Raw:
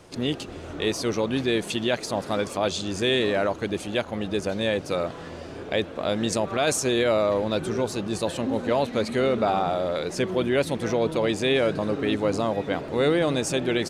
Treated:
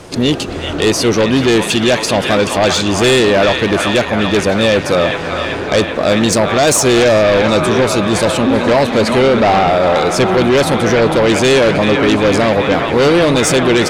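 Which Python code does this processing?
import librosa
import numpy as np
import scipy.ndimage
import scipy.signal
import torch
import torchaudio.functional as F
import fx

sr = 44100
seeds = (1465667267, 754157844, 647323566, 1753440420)

y = fx.echo_wet_bandpass(x, sr, ms=386, feedback_pct=74, hz=1600.0, wet_db=-5.0)
y = fx.fold_sine(y, sr, drive_db=7, ceiling_db=-11.0)
y = y * 10.0 ** (4.5 / 20.0)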